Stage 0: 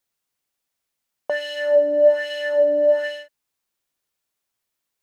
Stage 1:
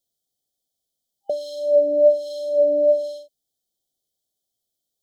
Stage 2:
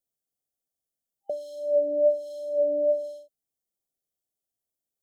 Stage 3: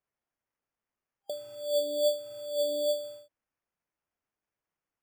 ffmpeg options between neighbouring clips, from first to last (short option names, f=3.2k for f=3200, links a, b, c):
-af "afftfilt=real='re*(1-between(b*sr/4096,800,3000))':imag='im*(1-between(b*sr/4096,800,3000))':win_size=4096:overlap=0.75"
-af "equalizer=f=3.9k:t=o:w=1.1:g=-10,volume=-6.5dB"
-af "acrusher=samples=11:mix=1:aa=0.000001,volume=-5.5dB"